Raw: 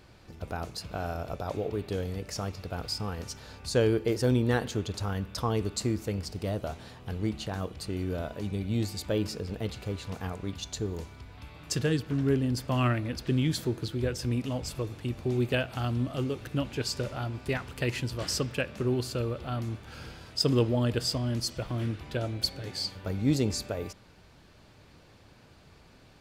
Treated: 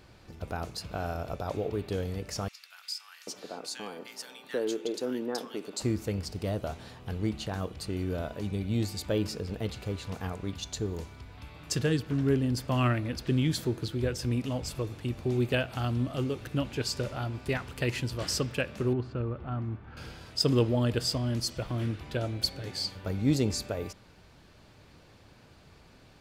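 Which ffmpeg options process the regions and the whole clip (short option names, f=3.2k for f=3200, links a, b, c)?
-filter_complex "[0:a]asettb=1/sr,asplit=3[a][b][c];[a]atrim=end=2.484[d];[b]atrim=start=2.48:end=5.82,asetpts=PTS-STARTPTS,afade=t=in:d=0.004:c=qsin,afade=t=out:st=3.336:d=0.004:c=qsin,highpass=f=240:w=0.5412,highpass=f=240:w=1.3066,acompressor=threshold=-35dB:ratio=1.5:attack=3.2:release=140:knee=1:detection=peak,acrossover=split=1500[e][f];[e]adelay=790[g];[g][f]amix=inputs=2:normalize=0,atrim=end_sample=147294[h];[c]atrim=start=5.816[i];[d][h]acrossfade=d=0.004:c1=hsin:c2=qsin[j];[j][i]acrossfade=d=0.004:c1=qsin:c2=hsin,asettb=1/sr,asplit=3[k][l][m];[k]atrim=end=18.934[n];[l]atrim=start=18.93:end=19.97,asetpts=PTS-STARTPTS,afade=t=in:d=0.004:c=qsin,afade=t=out:st=1.036:d=0.004:c=qsin,lowpass=1.5k,equalizer=f=540:w=2:g=-6.5[o];[m]atrim=start=19.966[p];[n][o]acrossfade=d=0.004:c1=hsin:c2=qsin[q];[q][p]acrossfade=d=0.004:c1=qsin:c2=hsin"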